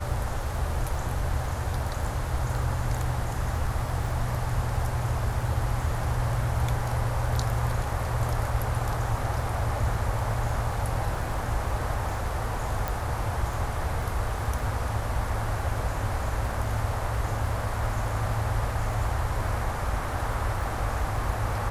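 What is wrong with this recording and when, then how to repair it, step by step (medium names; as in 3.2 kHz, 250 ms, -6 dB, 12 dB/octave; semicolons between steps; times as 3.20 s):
crackle 25 per s -34 dBFS
12.88 s: pop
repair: de-click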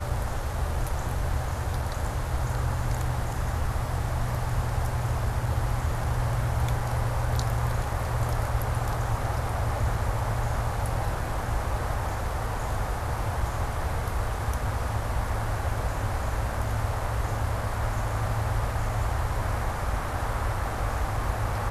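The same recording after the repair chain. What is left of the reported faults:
nothing left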